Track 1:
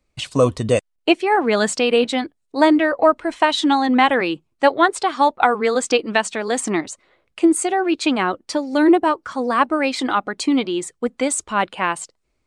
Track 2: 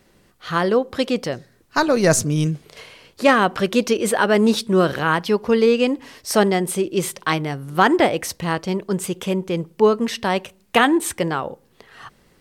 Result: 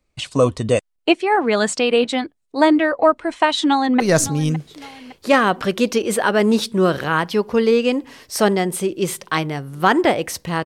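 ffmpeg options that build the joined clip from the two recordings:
ffmpeg -i cue0.wav -i cue1.wav -filter_complex "[0:a]apad=whole_dur=10.65,atrim=end=10.65,atrim=end=4.002[link_01];[1:a]atrim=start=1.948:end=8.6[link_02];[link_01][link_02]acrossfade=duration=0.004:curve1=hsin:curve2=hsin,asplit=2[link_03][link_04];[link_04]afade=type=in:start_time=3.55:duration=0.01,afade=type=out:start_time=4:duration=0.01,aecho=0:1:560|1120|1680|2240:0.158489|0.0713202|0.0320941|0.0144423[link_05];[link_03][link_05]amix=inputs=2:normalize=0" out.wav

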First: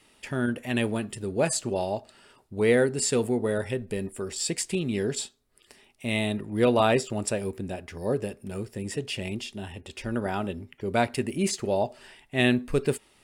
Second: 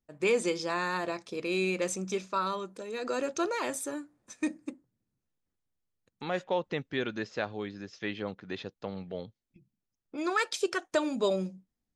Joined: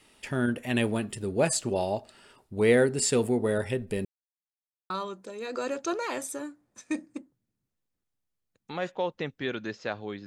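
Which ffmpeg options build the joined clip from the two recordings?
ffmpeg -i cue0.wav -i cue1.wav -filter_complex "[0:a]apad=whole_dur=10.26,atrim=end=10.26,asplit=2[link_01][link_02];[link_01]atrim=end=4.05,asetpts=PTS-STARTPTS,afade=type=out:start_time=4.046:duration=0.004:curve=hsin[link_03];[link_02]atrim=start=4.05:end=4.9,asetpts=PTS-STARTPTS,volume=0[link_04];[1:a]atrim=start=2.42:end=7.78,asetpts=PTS-STARTPTS,afade=type=in:duration=0.004:curve=hsin[link_05];[link_03][link_04][link_05]concat=n=3:v=0:a=1" out.wav

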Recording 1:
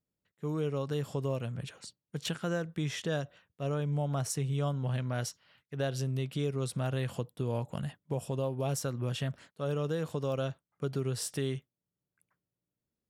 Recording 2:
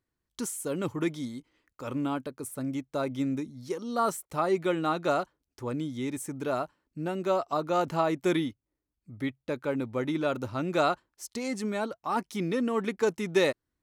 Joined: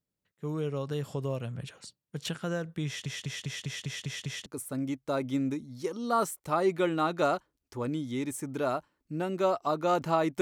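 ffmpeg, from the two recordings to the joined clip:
ffmpeg -i cue0.wav -i cue1.wav -filter_complex "[0:a]apad=whole_dur=10.41,atrim=end=10.41,asplit=8[link_01][link_02][link_03][link_04][link_05][link_06][link_07][link_08];[link_01]atrim=end=3.062[link_09];[link_02]atrim=start=2.858:end=3.062[link_10];[link_03]atrim=start=2.858:end=3.062[link_11];[link_04]atrim=start=2.858:end=3.062[link_12];[link_05]atrim=start=2.858:end=3.062[link_13];[link_06]atrim=start=2.858:end=3.062[link_14];[link_07]atrim=start=2.858:end=3.062[link_15];[link_08]atrim=start=2.858:end=3.062[link_16];[1:a]atrim=start=2.318:end=8.27[link_17];[link_09][link_10]acrossfade=duration=0.004:curve1=hsin:curve2=hsin[link_18];[link_18][link_11]acrossfade=duration=0.004:curve1=hsin:curve2=hsin[link_19];[link_19][link_12]acrossfade=duration=0.004:curve1=hsin:curve2=hsin[link_20];[link_20][link_13]acrossfade=duration=0.004:curve1=hsin:curve2=hsin[link_21];[link_21][link_14]acrossfade=duration=0.004:curve1=hsin:curve2=hsin[link_22];[link_22][link_15]acrossfade=duration=0.004:curve1=hsin:curve2=hsin[link_23];[link_23][link_16]acrossfade=duration=0.004:curve1=hsin:curve2=hsin[link_24];[link_24][link_17]acrossfade=duration=0.004:curve1=hsin:curve2=hsin" out.wav

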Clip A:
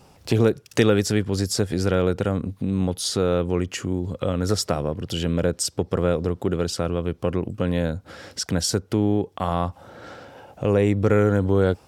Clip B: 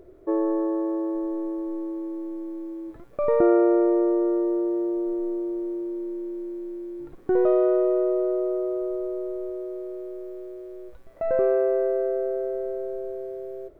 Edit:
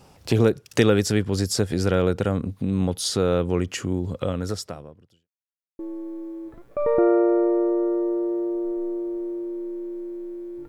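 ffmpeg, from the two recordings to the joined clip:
ffmpeg -i cue0.wav -i cue1.wav -filter_complex "[0:a]apad=whole_dur=10.68,atrim=end=10.68,asplit=2[link_01][link_02];[link_01]atrim=end=5.29,asetpts=PTS-STARTPTS,afade=type=out:start_time=4.18:duration=1.11:curve=qua[link_03];[link_02]atrim=start=5.29:end=5.79,asetpts=PTS-STARTPTS,volume=0[link_04];[1:a]atrim=start=2.21:end=7.1,asetpts=PTS-STARTPTS,afade=type=in:duration=0.004:curve=hsin[link_05];[link_03][link_04][link_05]concat=n=3:v=0:a=1" out.wav

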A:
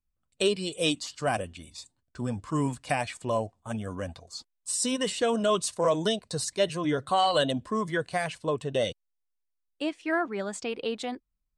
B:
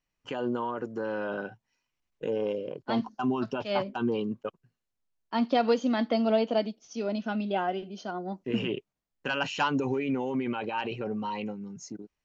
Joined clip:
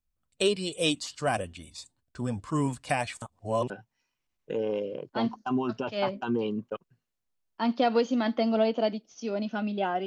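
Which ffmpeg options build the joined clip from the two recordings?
ffmpeg -i cue0.wav -i cue1.wav -filter_complex "[0:a]apad=whole_dur=10.06,atrim=end=10.06,asplit=2[link_01][link_02];[link_01]atrim=end=3.222[link_03];[link_02]atrim=start=3.218:end=3.702,asetpts=PTS-STARTPTS,areverse[link_04];[1:a]atrim=start=1.428:end=7.79[link_05];[link_03][link_04]acrossfade=duration=0.004:curve1=hsin:curve2=hsin[link_06];[link_06][link_05]acrossfade=duration=0.004:curve1=hsin:curve2=hsin" out.wav

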